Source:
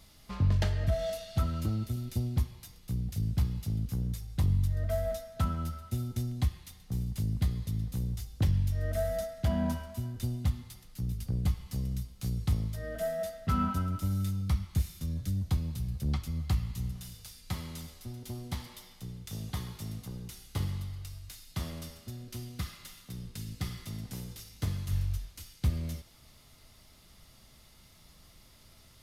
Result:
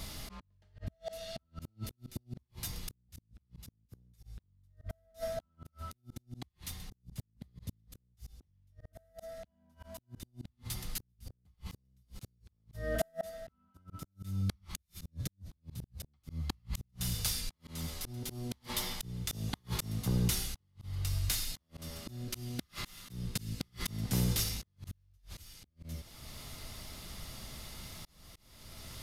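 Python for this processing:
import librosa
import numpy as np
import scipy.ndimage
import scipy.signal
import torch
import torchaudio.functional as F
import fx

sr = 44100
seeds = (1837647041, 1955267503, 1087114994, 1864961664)

y = fx.rider(x, sr, range_db=3, speed_s=0.5)
y = fx.gate_flip(y, sr, shuts_db=-25.0, range_db=-41)
y = fx.auto_swell(y, sr, attack_ms=586.0)
y = y * 10.0 ** (13.0 / 20.0)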